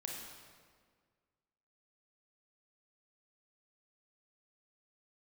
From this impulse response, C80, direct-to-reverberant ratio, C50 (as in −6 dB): 2.5 dB, −1.0 dB, 1.0 dB